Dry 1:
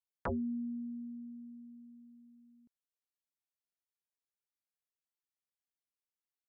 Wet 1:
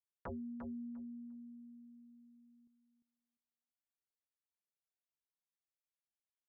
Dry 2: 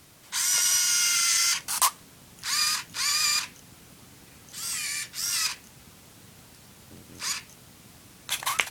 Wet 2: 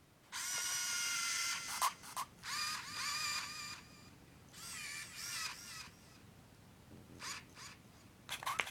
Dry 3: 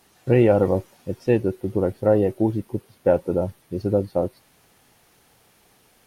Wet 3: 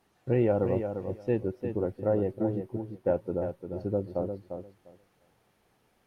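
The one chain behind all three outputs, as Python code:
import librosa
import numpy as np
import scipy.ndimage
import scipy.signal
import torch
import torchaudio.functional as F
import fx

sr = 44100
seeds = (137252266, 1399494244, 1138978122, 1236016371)

y = fx.high_shelf(x, sr, hz=3100.0, db=-11.0)
y = fx.echo_feedback(y, sr, ms=349, feedback_pct=16, wet_db=-7.5)
y = y * librosa.db_to_amplitude(-8.5)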